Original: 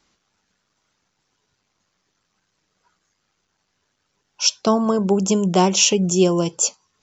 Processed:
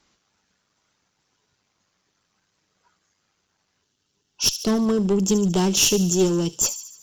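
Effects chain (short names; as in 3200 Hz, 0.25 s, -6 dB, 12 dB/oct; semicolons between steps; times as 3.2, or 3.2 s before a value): one-sided clip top -18.5 dBFS; spectral gain 3.82–6.65, 460–2600 Hz -7 dB; thin delay 73 ms, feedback 56%, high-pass 3900 Hz, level -10 dB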